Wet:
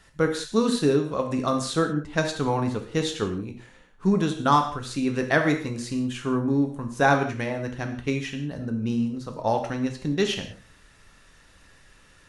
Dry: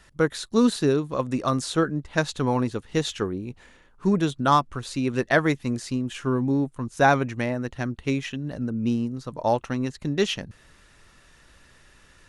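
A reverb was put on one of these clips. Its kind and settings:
reverb whose tail is shaped and stops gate 210 ms falling, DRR 4 dB
level −1.5 dB

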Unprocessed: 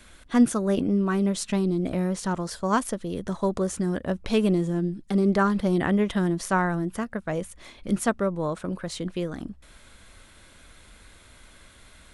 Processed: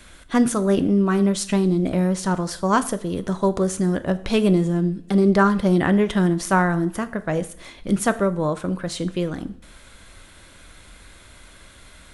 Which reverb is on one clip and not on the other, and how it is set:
coupled-rooms reverb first 0.48 s, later 2.3 s, from −25 dB, DRR 11 dB
level +4.5 dB

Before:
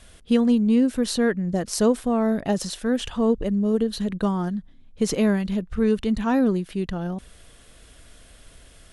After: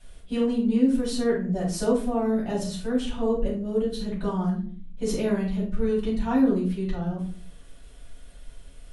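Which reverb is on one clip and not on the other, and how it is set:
rectangular room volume 300 cubic metres, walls furnished, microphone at 7 metres
level −15.5 dB

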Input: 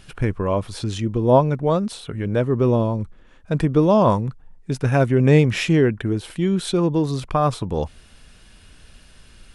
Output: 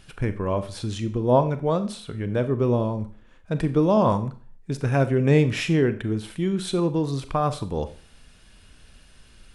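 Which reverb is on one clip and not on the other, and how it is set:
four-comb reverb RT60 0.43 s, combs from 29 ms, DRR 11 dB
level −4 dB

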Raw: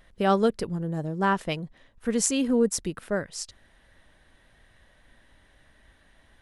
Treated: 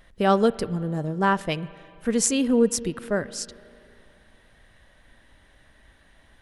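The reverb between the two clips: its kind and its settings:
spring reverb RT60 2.6 s, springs 34/39/58 ms, chirp 30 ms, DRR 17 dB
level +2.5 dB

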